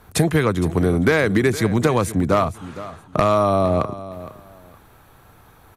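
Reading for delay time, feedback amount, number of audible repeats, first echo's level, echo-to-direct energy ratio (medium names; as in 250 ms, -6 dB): 463 ms, 23%, 2, -15.5 dB, -15.5 dB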